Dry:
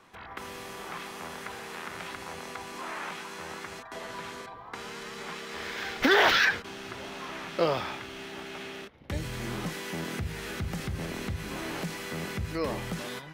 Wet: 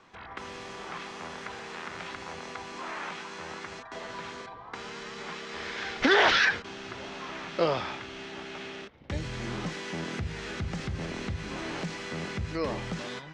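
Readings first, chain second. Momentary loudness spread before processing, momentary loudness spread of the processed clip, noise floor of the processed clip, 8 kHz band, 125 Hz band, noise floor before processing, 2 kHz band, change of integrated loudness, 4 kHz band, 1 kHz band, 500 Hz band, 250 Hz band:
14 LU, 14 LU, -45 dBFS, -2.5 dB, 0.0 dB, -45 dBFS, 0.0 dB, 0.0 dB, 0.0 dB, 0.0 dB, 0.0 dB, 0.0 dB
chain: low-pass 7 kHz 24 dB/octave

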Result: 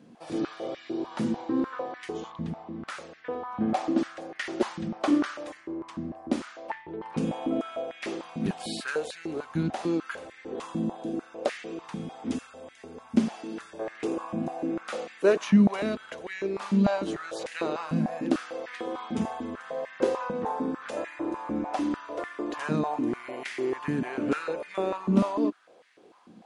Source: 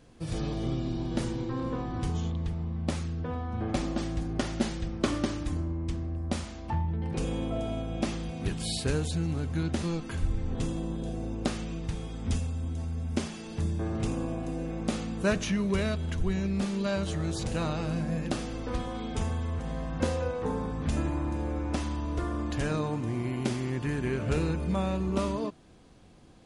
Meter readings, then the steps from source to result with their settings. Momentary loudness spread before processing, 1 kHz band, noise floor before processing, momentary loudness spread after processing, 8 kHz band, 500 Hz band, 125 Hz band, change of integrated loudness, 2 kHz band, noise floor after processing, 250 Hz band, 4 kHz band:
5 LU, +4.5 dB, -41 dBFS, 12 LU, -5.0 dB, +3.5 dB, -6.5 dB, +1.5 dB, +3.0 dB, -53 dBFS, +3.5 dB, -2.5 dB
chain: treble shelf 4.2 kHz -7 dB; step-sequenced high-pass 6.7 Hz 210–1900 Hz

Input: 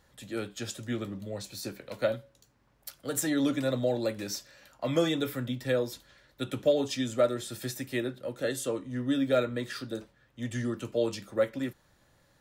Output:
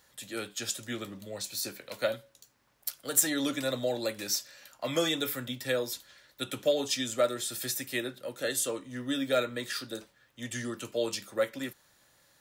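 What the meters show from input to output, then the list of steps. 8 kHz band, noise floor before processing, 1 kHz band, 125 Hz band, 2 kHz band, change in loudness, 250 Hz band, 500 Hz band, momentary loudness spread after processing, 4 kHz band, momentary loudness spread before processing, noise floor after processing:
+7.5 dB, -67 dBFS, +0.5 dB, -7.5 dB, +2.0 dB, -0.5 dB, -4.5 dB, -2.5 dB, 11 LU, +5.0 dB, 12 LU, -68 dBFS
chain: tilt EQ +2.5 dB/octave

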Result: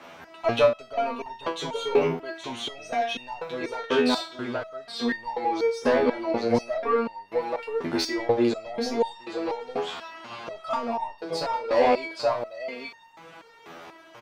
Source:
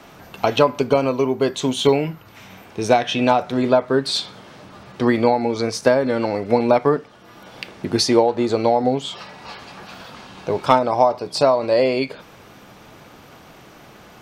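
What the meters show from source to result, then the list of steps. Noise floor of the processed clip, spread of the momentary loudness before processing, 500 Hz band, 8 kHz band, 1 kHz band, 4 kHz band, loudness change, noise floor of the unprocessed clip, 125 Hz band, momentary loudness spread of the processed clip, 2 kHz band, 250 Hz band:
-51 dBFS, 18 LU, -6.5 dB, -10.5 dB, -7.0 dB, -7.0 dB, -8.0 dB, -45 dBFS, -12.5 dB, 13 LU, -4.0 dB, -8.0 dB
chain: delay 821 ms -5 dB; overdrive pedal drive 18 dB, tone 2.1 kHz, clips at -1 dBFS; resonator arpeggio 4.1 Hz 83–910 Hz

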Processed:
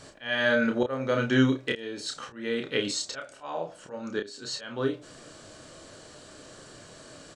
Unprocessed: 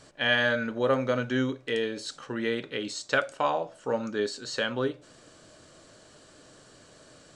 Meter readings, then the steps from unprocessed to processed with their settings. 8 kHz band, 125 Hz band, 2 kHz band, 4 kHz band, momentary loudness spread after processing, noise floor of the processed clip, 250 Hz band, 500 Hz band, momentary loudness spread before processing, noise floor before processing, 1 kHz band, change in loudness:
+4.0 dB, +3.0 dB, -1.5 dB, -0.5 dB, 24 LU, -50 dBFS, +3.0 dB, -1.5 dB, 8 LU, -55 dBFS, -5.0 dB, 0.0 dB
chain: slow attack 476 ms; doubling 30 ms -5 dB; trim +4.5 dB

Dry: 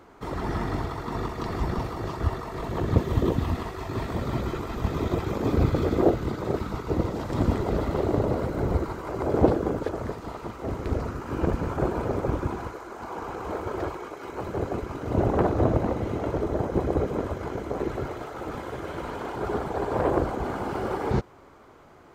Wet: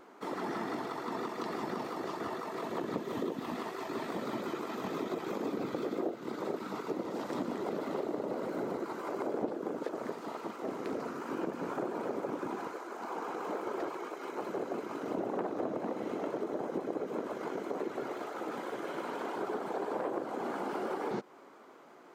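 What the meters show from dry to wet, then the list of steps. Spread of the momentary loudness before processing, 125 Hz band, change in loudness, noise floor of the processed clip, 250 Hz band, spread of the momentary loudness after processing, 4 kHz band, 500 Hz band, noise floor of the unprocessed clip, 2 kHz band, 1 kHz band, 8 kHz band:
11 LU, -23.0 dB, -9.0 dB, -54 dBFS, -9.0 dB, 4 LU, -5.5 dB, -8.0 dB, -50 dBFS, -5.5 dB, -6.5 dB, no reading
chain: high-pass 210 Hz 24 dB/octave; compression 5:1, threshold -29 dBFS, peak gain reduction 14.5 dB; vibrato 5.9 Hz 53 cents; trim -3 dB

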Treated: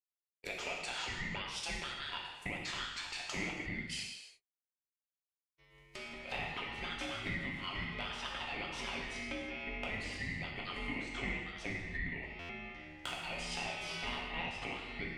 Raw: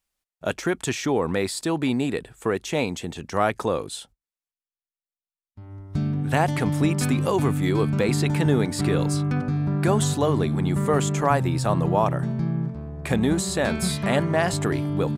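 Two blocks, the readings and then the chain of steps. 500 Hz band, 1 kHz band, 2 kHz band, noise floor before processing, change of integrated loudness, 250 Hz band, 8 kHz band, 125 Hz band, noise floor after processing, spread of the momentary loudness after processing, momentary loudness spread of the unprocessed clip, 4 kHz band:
-23.0 dB, -16.5 dB, -6.5 dB, under -85 dBFS, -16.0 dB, -23.0 dB, -17.0 dB, -25.5 dB, under -85 dBFS, 6 LU, 7 LU, -6.0 dB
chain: expander -34 dBFS; low-pass that closes with the level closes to 2.1 kHz, closed at -21.5 dBFS; steep high-pass 940 Hz 72 dB/octave; compression 6:1, threshold -43 dBFS, peak gain reduction 21 dB; hard clipper -32 dBFS, distortion -29 dB; ring modulator 940 Hz; gated-style reverb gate 370 ms falling, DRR -2.5 dB; buffer glitch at 12.39 s, samples 512, times 8; trim +5 dB

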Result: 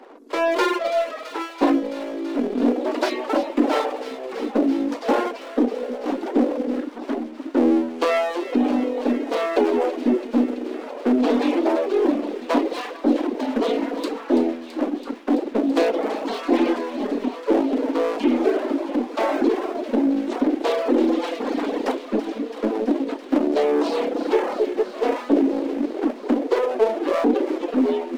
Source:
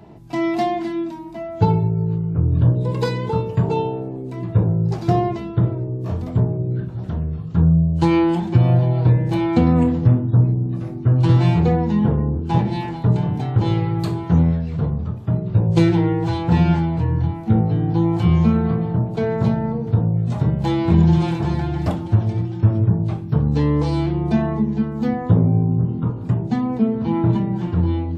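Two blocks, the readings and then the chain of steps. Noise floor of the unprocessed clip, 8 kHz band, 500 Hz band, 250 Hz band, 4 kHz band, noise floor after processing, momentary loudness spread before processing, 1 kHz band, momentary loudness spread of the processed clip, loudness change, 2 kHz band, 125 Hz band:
-30 dBFS, no reading, +4.5 dB, -1.0 dB, +3.0 dB, -37 dBFS, 8 LU, +0.5 dB, 7 LU, -3.5 dB, +4.0 dB, under -30 dB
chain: level rider; low-pass 4 kHz 6 dB/octave; bass shelf 460 Hz +3 dB; full-wave rectifier; dynamic bell 1.2 kHz, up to -5 dB, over -33 dBFS, Q 1.1; elliptic high-pass 260 Hz, stop band 40 dB; in parallel at +1 dB: peak limiter -15 dBFS, peak gain reduction 10.5 dB; on the sum: reverb removal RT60 1.9 s; on a send: feedback echo behind a high-pass 332 ms, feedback 81%, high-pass 2 kHz, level -10 dB; on the sum: trim -3 dB

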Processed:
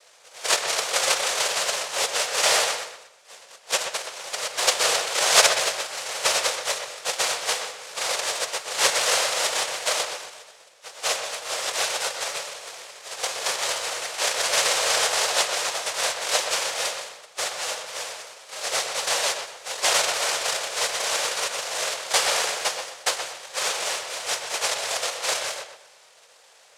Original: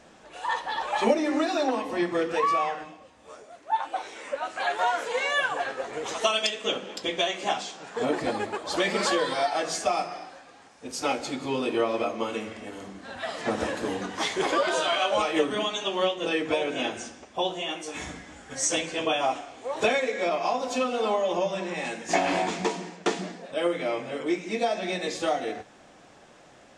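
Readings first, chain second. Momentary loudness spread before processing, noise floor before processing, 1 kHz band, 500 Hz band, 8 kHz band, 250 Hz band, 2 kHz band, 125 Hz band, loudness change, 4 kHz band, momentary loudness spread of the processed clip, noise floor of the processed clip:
11 LU, -53 dBFS, -1.0 dB, -3.5 dB, +14.0 dB, -19.0 dB, +4.5 dB, -10.5 dB, +4.0 dB, +8.5 dB, 11 LU, -53 dBFS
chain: level-controlled noise filter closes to 1.1 kHz, open at -24 dBFS; peaking EQ 1.8 kHz +15 dB 1.2 oct; noise-vocoded speech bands 1; resonant low shelf 370 Hz -12 dB, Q 3; on a send: filtered feedback delay 124 ms, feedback 31%, low-pass 3.6 kHz, level -7 dB; on the sum: trim -4.5 dB

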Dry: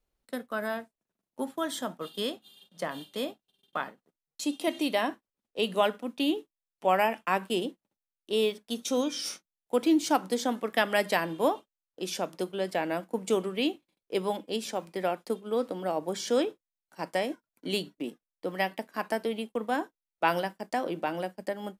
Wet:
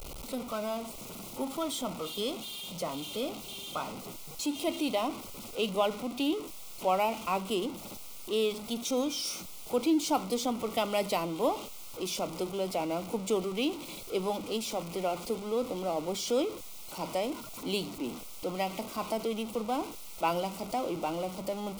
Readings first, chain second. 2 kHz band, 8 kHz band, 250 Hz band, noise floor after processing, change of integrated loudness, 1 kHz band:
-8.0 dB, +2.0 dB, -1.5 dB, -44 dBFS, -2.0 dB, -2.0 dB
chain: jump at every zero crossing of -31.5 dBFS; Butterworth band-stop 1.7 kHz, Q 2.3; trim -4 dB

